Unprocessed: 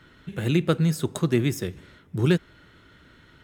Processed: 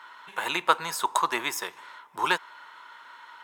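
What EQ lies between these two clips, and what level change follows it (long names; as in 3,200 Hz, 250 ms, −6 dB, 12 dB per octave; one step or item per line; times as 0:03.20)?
high-pass with resonance 960 Hz, resonance Q 8.9
+3.5 dB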